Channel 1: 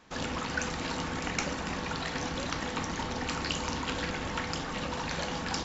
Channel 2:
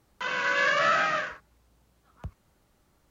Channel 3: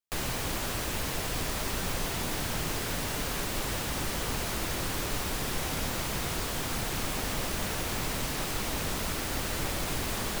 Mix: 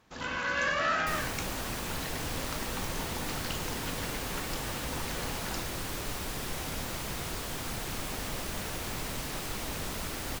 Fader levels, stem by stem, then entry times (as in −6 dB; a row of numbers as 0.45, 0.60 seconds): −7.0, −5.5, −4.0 decibels; 0.00, 0.00, 0.95 seconds